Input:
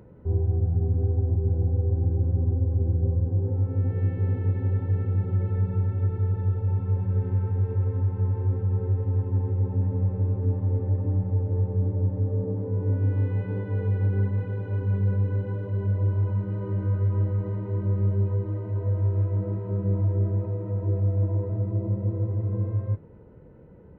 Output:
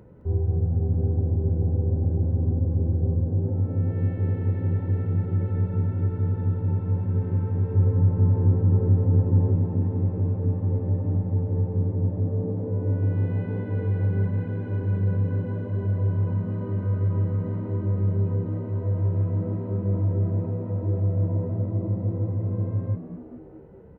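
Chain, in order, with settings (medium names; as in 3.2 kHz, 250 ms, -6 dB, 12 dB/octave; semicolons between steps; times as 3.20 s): 7.74–9.56 s: tilt shelf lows +5 dB, about 1.5 kHz; on a send: frequency-shifting echo 212 ms, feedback 56%, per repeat +71 Hz, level -13 dB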